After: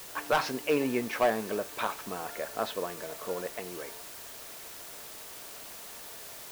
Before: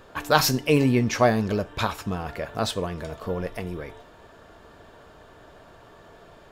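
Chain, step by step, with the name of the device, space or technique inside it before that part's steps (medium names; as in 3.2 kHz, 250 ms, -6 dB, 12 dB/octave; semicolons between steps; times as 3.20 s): aircraft radio (band-pass 350–2700 Hz; hard clipper -15 dBFS, distortion -12 dB; white noise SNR 11 dB); trim -3.5 dB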